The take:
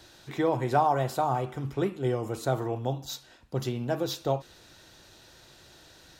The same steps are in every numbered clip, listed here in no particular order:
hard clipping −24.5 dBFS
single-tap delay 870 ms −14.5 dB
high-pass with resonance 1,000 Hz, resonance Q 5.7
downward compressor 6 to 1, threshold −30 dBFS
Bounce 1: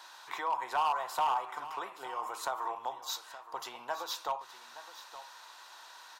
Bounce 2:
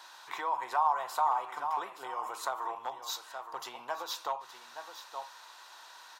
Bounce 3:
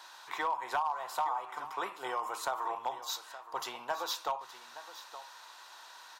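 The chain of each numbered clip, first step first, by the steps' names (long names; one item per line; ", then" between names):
downward compressor, then high-pass with resonance, then hard clipping, then single-tap delay
single-tap delay, then downward compressor, then hard clipping, then high-pass with resonance
high-pass with resonance, then downward compressor, then single-tap delay, then hard clipping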